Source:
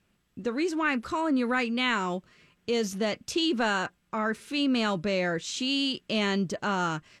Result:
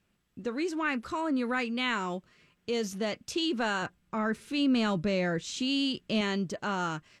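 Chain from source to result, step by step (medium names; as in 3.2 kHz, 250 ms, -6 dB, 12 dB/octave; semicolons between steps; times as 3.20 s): 3.82–6.21 s: bass shelf 250 Hz +8 dB; trim -3.5 dB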